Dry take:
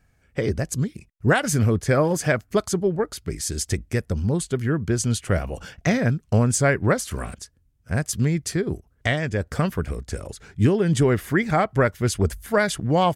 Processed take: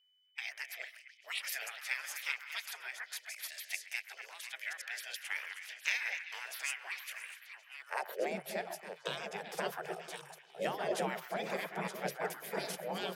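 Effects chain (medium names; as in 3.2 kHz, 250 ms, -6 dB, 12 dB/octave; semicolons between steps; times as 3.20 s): chunks repeated in reverse 602 ms, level -10.5 dB; gate -37 dBFS, range -15 dB; spectral gate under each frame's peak -20 dB weak; ten-band graphic EQ 125 Hz -9 dB, 250 Hz +7 dB, 500 Hz +7 dB, 1 kHz -8 dB, 2 kHz -5 dB, 4 kHz -4 dB, 8 kHz -10 dB; repeats whose band climbs or falls 129 ms, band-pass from 1.2 kHz, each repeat 0.7 oct, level -8 dB; frequency shift +140 Hz; high-pass sweep 2.1 kHz -> 110 Hz, 7.79–8.48 s; Chebyshev shaper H 2 -44 dB, 3 -23 dB, 5 -43 dB, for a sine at -18 dBFS; whistle 3 kHz -72 dBFS; trim +2 dB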